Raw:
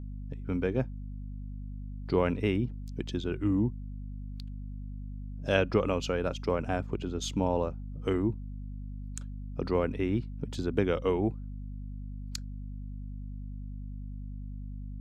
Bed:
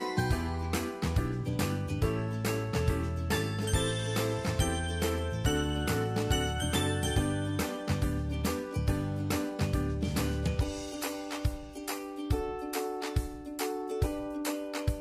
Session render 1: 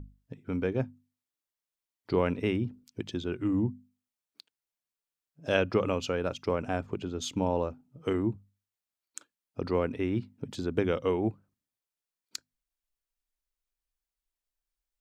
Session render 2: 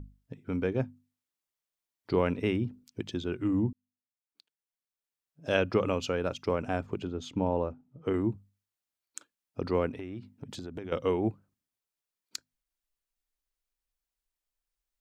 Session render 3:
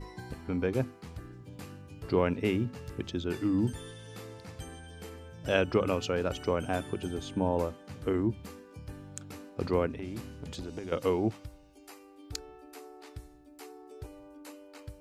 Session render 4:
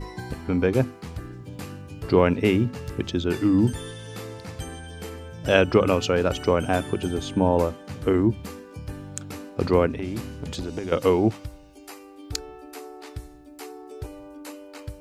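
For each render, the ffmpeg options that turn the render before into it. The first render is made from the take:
-af "bandreject=f=50:t=h:w=6,bandreject=f=100:t=h:w=6,bandreject=f=150:t=h:w=6,bandreject=f=200:t=h:w=6,bandreject=f=250:t=h:w=6"
-filter_complex "[0:a]asettb=1/sr,asplit=3[s0][s1][s2];[s0]atrim=end=7.074[s3];[s1]atrim=start=7.07:end=8.14,asetpts=PTS-STARTPTS,afade=t=in:d=0.004:c=qsin,afade=t=out:st=1.066:d=0.004:c=qsin,lowpass=f=1700:p=1[s4];[s2]atrim=start=8.136[s5];[s3][s4]acrossfade=d=0.004:c1=hsin:c2=qsin[s6];[s6][s5]acrossfade=d=0.004:c1=qsin:c2=hsin,asettb=1/sr,asplit=3[s7][s8][s9];[s7]atrim=end=9.894[s10];[s8]atrim=start=9.89:end=10.92,asetpts=PTS-STARTPTS,afade=t=in:d=0.004:c=qsin,afade=t=out:st=1.026:d=0.004:c=qsin,acompressor=threshold=0.0158:ratio=6:attack=3.2:release=140:knee=1:detection=peak[s11];[s9]atrim=start=10.916[s12];[s10][s11]acrossfade=d=0.004:c1=hsin:c2=qsin[s13];[s13][s12]acrossfade=d=0.004:c1=qsin:c2=hsin,asplit=2[s14][s15];[s14]atrim=end=3.73,asetpts=PTS-STARTPTS,afade=t=out:st=3.726:d=0.004:c=hsin[s16];[s15]atrim=start=3.73,asetpts=PTS-STARTPTS,afade=t=in:d=1.96[s17];[s16][s17]concat=n=2:v=0:a=1"
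-filter_complex "[1:a]volume=0.188[s0];[0:a][s0]amix=inputs=2:normalize=0"
-af "volume=2.66"

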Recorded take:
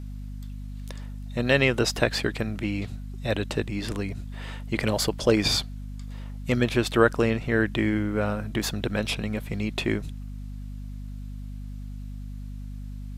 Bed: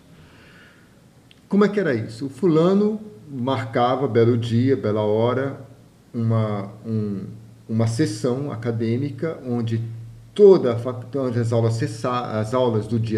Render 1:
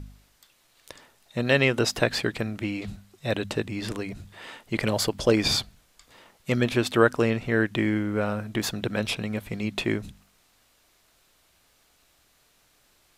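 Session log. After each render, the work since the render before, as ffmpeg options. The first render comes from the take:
-af "bandreject=f=50:t=h:w=4,bandreject=f=100:t=h:w=4,bandreject=f=150:t=h:w=4,bandreject=f=200:t=h:w=4,bandreject=f=250:t=h:w=4"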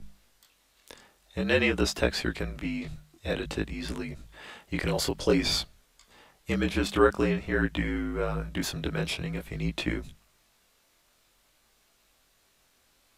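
-af "flanger=delay=16.5:depth=7.6:speed=0.5,afreqshift=-48"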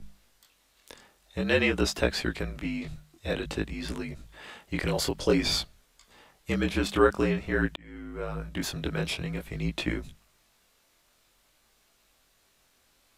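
-filter_complex "[0:a]asplit=2[s0][s1];[s0]atrim=end=7.76,asetpts=PTS-STARTPTS,afade=t=out:st=7.756:d=0.004:c=hsin[s2];[s1]atrim=start=7.76,asetpts=PTS-STARTPTS,afade=t=in:d=1.26:c=qsin[s3];[s2][s3]concat=n=2:v=0:a=1"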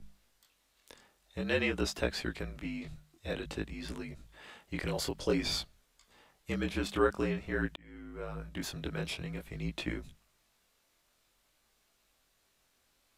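-af "volume=0.473"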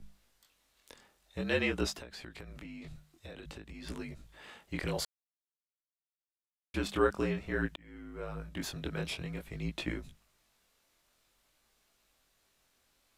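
-filter_complex "[0:a]asettb=1/sr,asplit=3[s0][s1][s2];[s0]atrim=end=1.944[s3];[s1]atrim=start=1.94:end=3.87,asetpts=PTS-STARTPTS,afade=t=in:d=0.004:c=qsin,afade=t=out:st=1.926:d=0.004:c=qsin,acompressor=threshold=0.00794:ratio=20:attack=3.2:release=140:knee=1:detection=peak[s4];[s2]atrim=start=3.866[s5];[s3][s4]acrossfade=d=0.004:c1=hsin:c2=qsin[s6];[s6][s5]acrossfade=d=0.004:c1=qsin:c2=hsin,asplit=3[s7][s8][s9];[s7]atrim=end=5.05,asetpts=PTS-STARTPTS,afade=t=out:st=5.046:d=0.004:c=hsin[s10];[s8]atrim=start=5.05:end=6.74,asetpts=PTS-STARTPTS,volume=0[s11];[s9]atrim=start=6.74,asetpts=PTS-STARTPTS,afade=t=in:d=0.004:c=hsin[s12];[s10][s11][s12]concat=n=3:v=0:a=1"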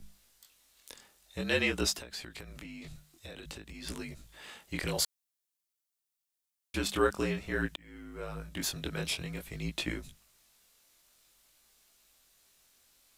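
-af "highshelf=f=3600:g=11"

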